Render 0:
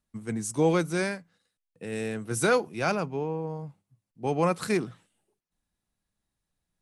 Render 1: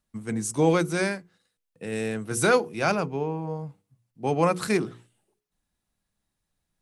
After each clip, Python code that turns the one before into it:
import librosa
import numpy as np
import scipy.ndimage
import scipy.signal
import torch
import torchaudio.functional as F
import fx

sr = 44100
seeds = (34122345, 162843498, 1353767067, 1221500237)

y = fx.hum_notches(x, sr, base_hz=60, count=8)
y = F.gain(torch.from_numpy(y), 3.0).numpy()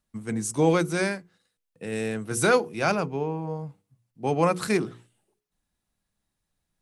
y = x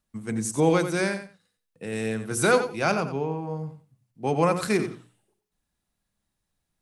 y = fx.echo_feedback(x, sr, ms=90, feedback_pct=18, wet_db=-10.5)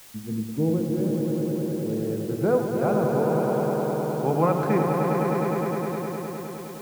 y = fx.filter_sweep_lowpass(x, sr, from_hz=320.0, to_hz=1400.0, start_s=1.17, end_s=4.1, q=0.82)
y = fx.echo_swell(y, sr, ms=103, loudest=5, wet_db=-6.5)
y = fx.quant_dither(y, sr, seeds[0], bits=8, dither='triangular')